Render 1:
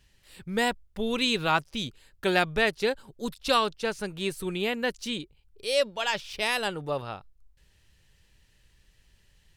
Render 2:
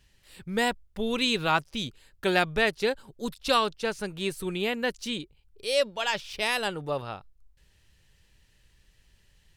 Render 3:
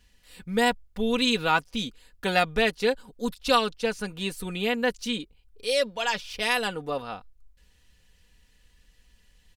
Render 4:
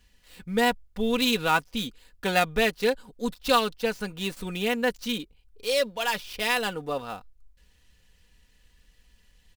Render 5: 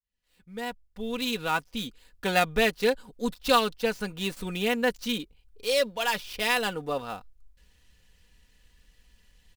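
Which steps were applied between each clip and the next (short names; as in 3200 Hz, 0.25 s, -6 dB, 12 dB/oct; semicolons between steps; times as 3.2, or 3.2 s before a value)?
nothing audible
comb 4.1 ms, depth 61%
switching dead time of 0.056 ms
opening faded in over 2.53 s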